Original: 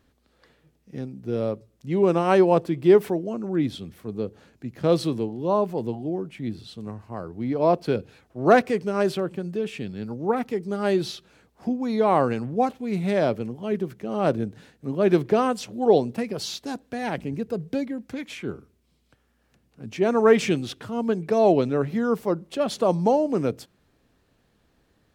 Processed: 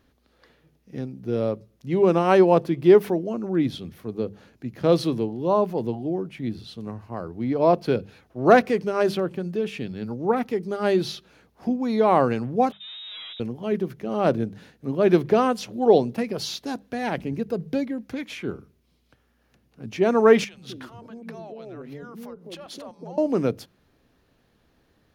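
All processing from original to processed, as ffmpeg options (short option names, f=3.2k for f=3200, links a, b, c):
-filter_complex "[0:a]asettb=1/sr,asplit=3[a][b][c];[a]atrim=end=12.724[d];[b]atrim=start=12.72:end=13.4,asetpts=PTS-STARTPTS,afade=t=in:d=0.004:c=qsin,afade=t=out:st=0.676:d=0.004:c=qsin,aeval=exprs='(tanh(100*val(0)+0.35)-tanh(0.35))/100':c=same,lowpass=f=3.3k:t=q:w=0.5098,lowpass=f=3.3k:t=q:w=0.6013,lowpass=f=3.3k:t=q:w=0.9,lowpass=f=3.3k:t=q:w=2.563,afreqshift=-3900[e];[c]atrim=start=13.396[f];[d][e]acrossfade=d=0.004:c1=hsin:c2=qsin[g];[g][f]acrossfade=d=0.004:c1=qsin:c2=hsin,asettb=1/sr,asplit=3[h][i][j];[h]atrim=end=20.444[k];[i]atrim=start=20.44:end=23.18,asetpts=PTS-STARTPTS,afade=t=in:d=0.004:c=qsin,afade=t=out:st=2.736:d=0.004:c=qsin,acompressor=threshold=-36dB:ratio=5:attack=3.2:release=140:knee=1:detection=peak,acrossover=split=180|560[l][m][n];[l]adelay=90[o];[m]adelay=210[p];[o][p][n]amix=inputs=3:normalize=0,atrim=end_sample=120834[q];[j]atrim=start=23.176[r];[k][q]acrossfade=d=0.004:c1=hsin:c2=qsin[s];[s][r]acrossfade=d=0.004:c1=qsin:c2=hsin,equalizer=f=7.9k:t=o:w=0.26:g=-9,bandreject=f=50:t=h:w=6,bandreject=f=100:t=h:w=6,bandreject=f=150:t=h:w=6,bandreject=f=200:t=h:w=6,volume=1.5dB"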